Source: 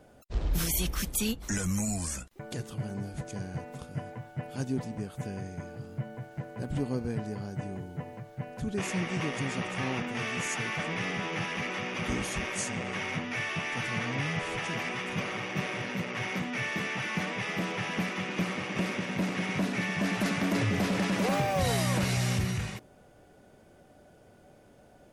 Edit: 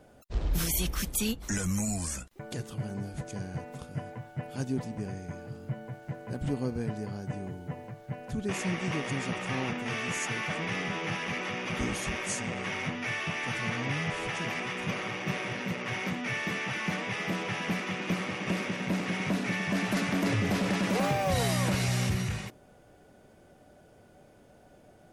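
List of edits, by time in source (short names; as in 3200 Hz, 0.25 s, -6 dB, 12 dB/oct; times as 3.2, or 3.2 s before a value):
5.06–5.35 cut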